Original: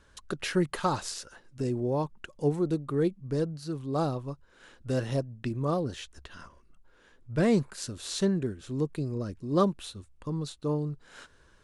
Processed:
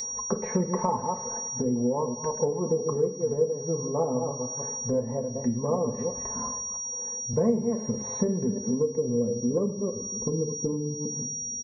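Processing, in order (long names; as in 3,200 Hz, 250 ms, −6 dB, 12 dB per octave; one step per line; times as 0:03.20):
delay that plays each chunk backwards 165 ms, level −9.5 dB
high-pass filter 64 Hz
high-frequency loss of the air 270 metres
feedback echo with a high-pass in the loop 105 ms, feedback 83%, high-pass 910 Hz, level −16 dB
low-pass filter sweep 750 Hz → 280 Hz, 0:08.41–0:11.20
steady tone 5,700 Hz −36 dBFS
EQ curve with evenly spaced ripples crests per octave 0.96, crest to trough 15 dB
downward compressor 5 to 1, threshold −36 dBFS, peak gain reduction 21.5 dB
comb filter 4.6 ms, depth 50%
convolution reverb RT60 0.50 s, pre-delay 6 ms, DRR 4.5 dB
0:07.33–0:08.02: multiband upward and downward compressor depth 40%
level +9 dB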